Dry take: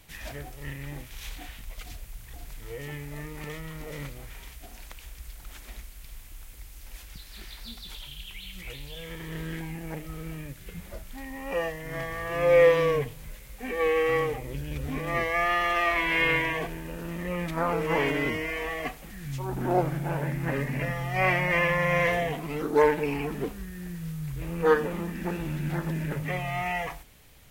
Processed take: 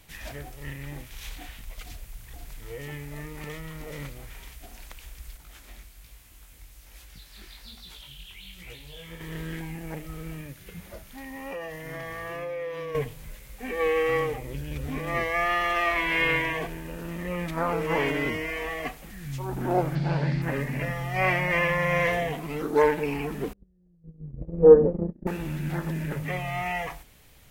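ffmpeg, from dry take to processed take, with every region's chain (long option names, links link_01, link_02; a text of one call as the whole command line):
ffmpeg -i in.wav -filter_complex "[0:a]asettb=1/sr,asplit=3[link_01][link_02][link_03];[link_01]atrim=end=5.374[link_04];[link_02]atrim=start=5.37:end=9.21,asetpts=PTS-STARTPTS,afade=type=in:duration=0.004:curve=qsin,afade=type=out:start_time=3.836:duration=0.004:curve=qsin,highpass=40,flanger=delay=17:depth=6.8:speed=1.2[link_05];[link_03]atrim=start=9.206[link_06];[link_04][link_05]acrossfade=duration=0.004:curve1=hsin:curve2=qsin[link_07];[link_07][link_06]acrossfade=duration=0.004:curve1=qsin:curve2=hsin,asettb=1/sr,asplit=3[link_08][link_09][link_10];[link_08]atrim=end=10.414[link_11];[link_09]atrim=start=10.41:end=12.95,asetpts=PTS-STARTPTS,afade=type=in:duration=0.004:curve=qsin,afade=type=out:start_time=2.536:duration=0.004:curve=qsin,highpass=frequency=76:poles=1,bandreject=frequency=7700:width=12,acompressor=threshold=-32dB:ratio=6:attack=3.2:release=140:knee=1:detection=peak[link_12];[link_10]atrim=start=12.946[link_13];[link_11][link_12]acrossfade=duration=0.004:curve1=hsin:curve2=qsin[link_14];[link_14][link_13]acrossfade=duration=0.004:curve1=qsin:curve2=hsin,asettb=1/sr,asplit=3[link_15][link_16][link_17];[link_15]atrim=end=19.954[link_18];[link_16]atrim=start=19.95:end=20.42,asetpts=PTS-STARTPTS,afade=type=in:duration=0.004:curve=qsin,afade=type=out:start_time=0.466:duration=0.004:curve=qsin,lowpass=frequency=4500:width_type=q:width=5.9,equalizer=frequency=170:width=1.4:gain=6[link_19];[link_17]atrim=start=20.416[link_20];[link_18][link_19]acrossfade=duration=0.004:curve1=hsin:curve2=qsin[link_21];[link_21][link_20]acrossfade=duration=0.004:curve1=qsin:curve2=hsin,asettb=1/sr,asplit=3[link_22][link_23][link_24];[link_22]atrim=end=23.534[link_25];[link_23]atrim=start=23.53:end=25.27,asetpts=PTS-STARTPTS,afade=type=in:duration=0.004:curve=qsin,afade=type=out:start_time=1.736:duration=0.004:curve=qsin,agate=range=-33dB:threshold=-32dB:ratio=16:release=100:detection=peak,lowpass=frequency=540:width_type=q:width=2.2,lowshelf=frequency=290:gain=10.5[link_26];[link_24]atrim=start=25.266[link_27];[link_25][link_26]acrossfade=duration=0.004:curve1=hsin:curve2=qsin[link_28];[link_28][link_27]acrossfade=duration=0.004:curve1=qsin:curve2=hsin" out.wav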